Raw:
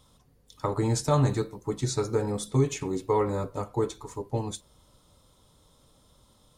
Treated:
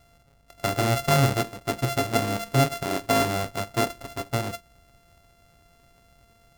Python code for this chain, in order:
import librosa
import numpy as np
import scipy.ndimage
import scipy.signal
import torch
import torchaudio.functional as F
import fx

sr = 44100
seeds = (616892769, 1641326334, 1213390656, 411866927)

y = np.r_[np.sort(x[:len(x) // 64 * 64].reshape(-1, 64), axis=1).ravel(), x[len(x) // 64 * 64:]]
y = y * 10.0 ** (2.5 / 20.0)